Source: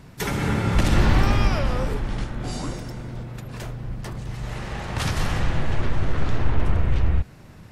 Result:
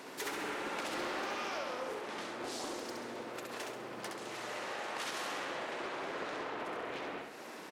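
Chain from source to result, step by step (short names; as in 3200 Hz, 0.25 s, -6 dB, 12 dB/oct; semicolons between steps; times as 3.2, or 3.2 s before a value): HPF 320 Hz 24 dB/oct; compressor 3:1, threshold -47 dBFS, peak gain reduction 17.5 dB; soft clip -33.5 dBFS, distortion -25 dB; on a send: feedback echo 67 ms, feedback 43%, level -4 dB; on the sum: Doppler distortion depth 0.29 ms; gain +4.5 dB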